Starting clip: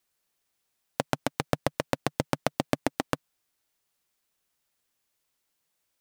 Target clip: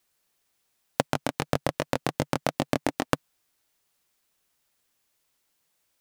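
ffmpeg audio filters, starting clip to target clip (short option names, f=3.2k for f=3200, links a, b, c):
-filter_complex "[0:a]asplit=3[a][b][c];[a]afade=t=out:st=1.06:d=0.02[d];[b]flanger=delay=20:depth=4.8:speed=2.7,afade=t=in:st=1.06:d=0.02,afade=t=out:st=3.11:d=0.02[e];[c]afade=t=in:st=3.11:d=0.02[f];[d][e][f]amix=inputs=3:normalize=0,volume=4.5dB"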